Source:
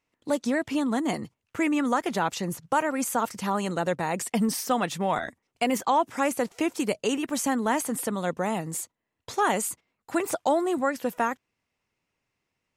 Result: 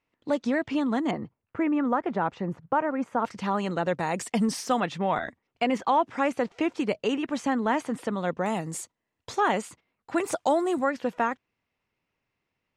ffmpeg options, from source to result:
ffmpeg -i in.wav -af "asetnsamples=nb_out_samples=441:pad=0,asendcmd='1.11 lowpass f 1500;3.25 lowpass f 4000;3.95 lowpass f 7300;4.8 lowpass f 3600;8.46 lowpass f 8200;9.38 lowpass f 4100;10.18 lowpass f 9300;10.84 lowpass f 4200',lowpass=4000" out.wav

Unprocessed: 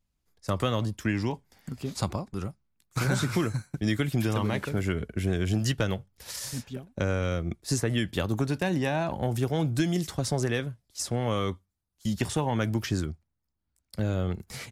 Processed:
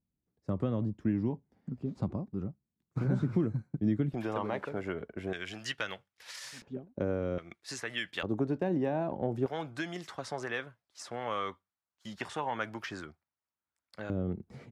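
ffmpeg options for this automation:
ffmpeg -i in.wav -af "asetnsamples=nb_out_samples=441:pad=0,asendcmd='4.14 bandpass f 720;5.33 bandpass f 2000;6.62 bandpass f 350;7.38 bandpass f 2000;8.23 bandpass f 380;9.46 bandpass f 1300;14.1 bandpass f 260',bandpass=frequency=220:width_type=q:width=0.95:csg=0" out.wav

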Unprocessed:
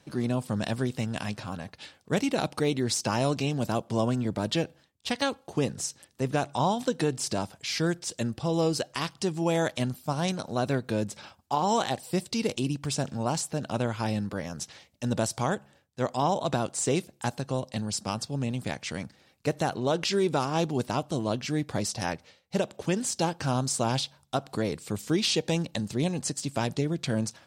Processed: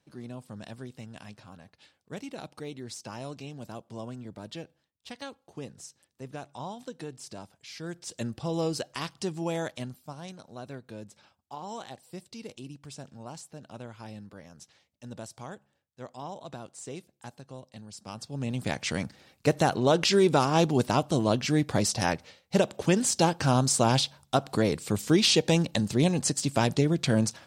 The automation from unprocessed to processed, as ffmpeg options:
ffmpeg -i in.wav -af "volume=14.5dB,afade=type=in:start_time=7.82:duration=0.4:silence=0.334965,afade=type=out:start_time=9.29:duration=0.91:silence=0.298538,afade=type=in:start_time=17.96:duration=0.34:silence=0.398107,afade=type=in:start_time=18.3:duration=0.55:silence=0.316228" out.wav

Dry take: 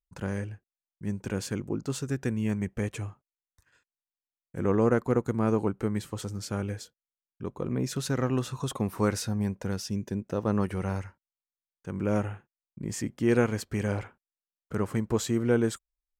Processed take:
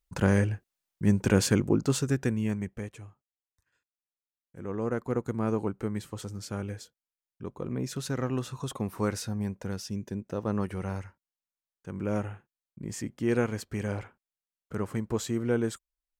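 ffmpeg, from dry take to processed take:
ffmpeg -i in.wav -af "volume=16.5dB,afade=type=out:start_time=1.44:duration=0.92:silence=0.375837,afade=type=out:start_time=2.36:duration=0.59:silence=0.281838,afade=type=in:start_time=4.67:duration=0.61:silence=0.421697" out.wav

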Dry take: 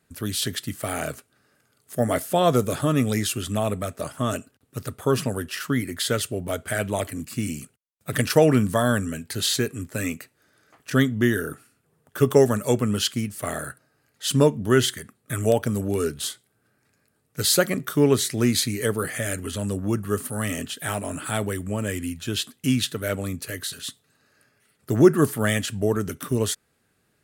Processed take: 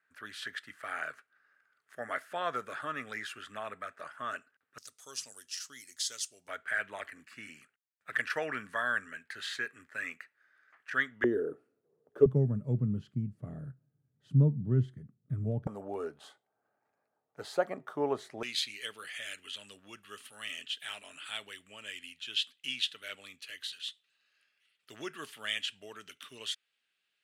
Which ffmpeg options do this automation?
ffmpeg -i in.wav -af "asetnsamples=nb_out_samples=441:pad=0,asendcmd='4.78 bandpass f 5900;6.48 bandpass f 1700;11.24 bandpass f 440;12.26 bandpass f 140;15.67 bandpass f 780;18.43 bandpass f 3000',bandpass=frequency=1600:width_type=q:width=3:csg=0" out.wav

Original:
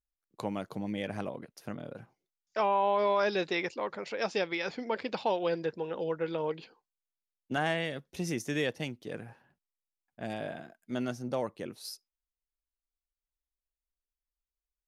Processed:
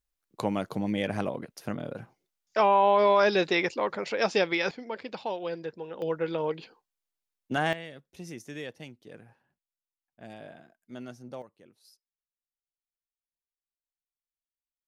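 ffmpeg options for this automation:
ffmpeg -i in.wav -af "asetnsamples=nb_out_samples=441:pad=0,asendcmd='4.71 volume volume -3.5dB;6.02 volume volume 3dB;7.73 volume volume -8dB;11.42 volume volume -17dB',volume=6dB" out.wav

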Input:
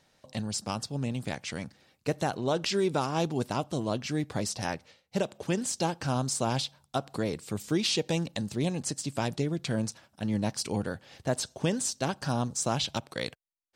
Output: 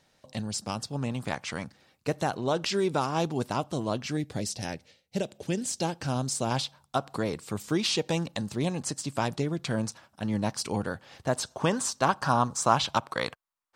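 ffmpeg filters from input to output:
ffmpeg -i in.wav -af "asetnsamples=nb_out_samples=441:pad=0,asendcmd='0.93 equalizer g 9.5;1.64 equalizer g 3;4.17 equalizer g -9;5.68 equalizer g -2.5;6.51 equalizer g 6;11.51 equalizer g 14.5',equalizer=frequency=1100:width_type=o:width=1.1:gain=0" out.wav

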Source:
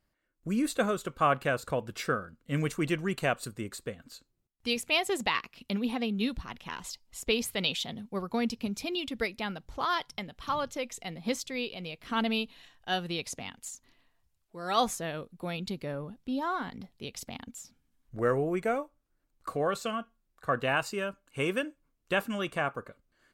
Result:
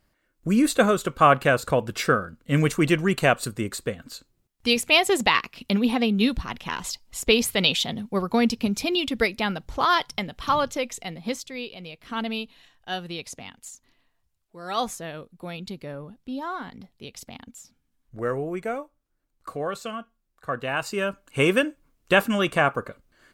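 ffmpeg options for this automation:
ffmpeg -i in.wav -af "volume=19dB,afade=type=out:start_time=10.55:duration=0.89:silence=0.354813,afade=type=in:start_time=20.72:duration=0.51:silence=0.316228" out.wav

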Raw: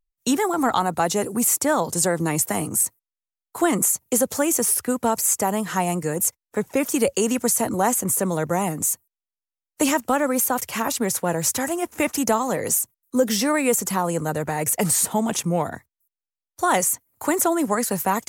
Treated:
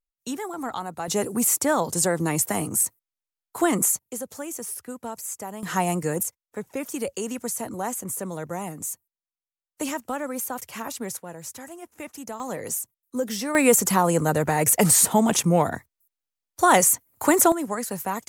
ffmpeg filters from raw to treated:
ffmpeg -i in.wav -af "asetnsamples=nb_out_samples=441:pad=0,asendcmd='1.08 volume volume -1.5dB;3.99 volume volume -13dB;5.63 volume volume -1dB;6.23 volume volume -9dB;11.17 volume volume -15.5dB;12.4 volume volume -7.5dB;13.55 volume volume 3dB;17.52 volume volume -6.5dB',volume=-10.5dB" out.wav

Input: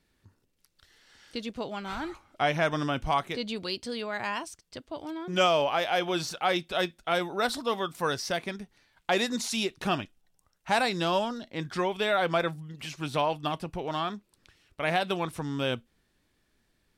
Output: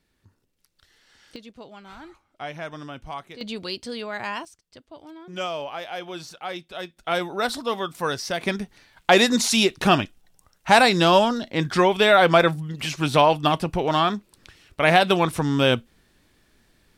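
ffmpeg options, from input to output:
ffmpeg -i in.wav -af "asetnsamples=nb_out_samples=441:pad=0,asendcmd='1.36 volume volume -8dB;3.41 volume volume 2dB;4.45 volume volume -6dB;6.97 volume volume 3dB;8.41 volume volume 10.5dB',volume=0.5dB" out.wav

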